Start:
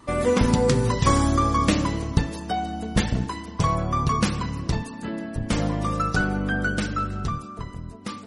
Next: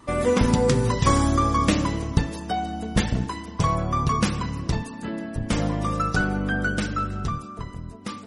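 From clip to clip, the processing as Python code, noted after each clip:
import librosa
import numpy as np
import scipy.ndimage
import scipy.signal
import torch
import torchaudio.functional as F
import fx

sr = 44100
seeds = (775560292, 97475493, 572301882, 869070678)

y = fx.notch(x, sr, hz=4300.0, q=24.0)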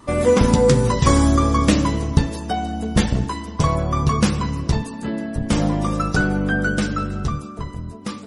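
y = fx.peak_eq(x, sr, hz=2200.0, db=-3.0, octaves=1.7)
y = fx.doubler(y, sr, ms=14.0, db=-9)
y = y * 10.0 ** (4.5 / 20.0)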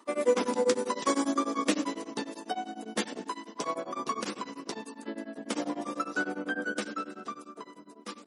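y = scipy.signal.sosfilt(scipy.signal.butter(6, 250.0, 'highpass', fs=sr, output='sos'), x)
y = y * np.abs(np.cos(np.pi * 10.0 * np.arange(len(y)) / sr))
y = y * 10.0 ** (-7.0 / 20.0)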